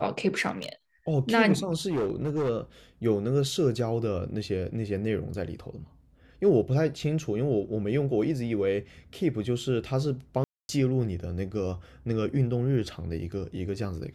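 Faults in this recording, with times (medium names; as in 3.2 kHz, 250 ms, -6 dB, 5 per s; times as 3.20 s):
0.56–0.72 s: clipped -29 dBFS
1.89–2.50 s: clipped -24 dBFS
10.44–10.69 s: dropout 251 ms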